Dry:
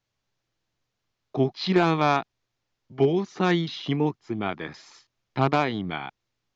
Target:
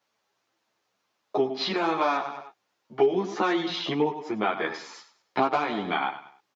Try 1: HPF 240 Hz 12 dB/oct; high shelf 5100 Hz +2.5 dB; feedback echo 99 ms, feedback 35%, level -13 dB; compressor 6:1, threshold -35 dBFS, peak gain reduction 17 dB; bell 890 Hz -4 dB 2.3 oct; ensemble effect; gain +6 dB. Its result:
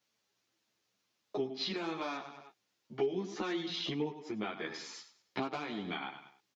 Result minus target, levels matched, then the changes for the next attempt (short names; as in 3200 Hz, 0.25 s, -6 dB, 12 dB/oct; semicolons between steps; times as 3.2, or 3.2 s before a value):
compressor: peak gain reduction +5.5 dB; 1000 Hz band -4.5 dB
change: compressor 6:1, threshold -28.5 dBFS, peak gain reduction 12 dB; change: bell 890 Hz +7 dB 2.3 oct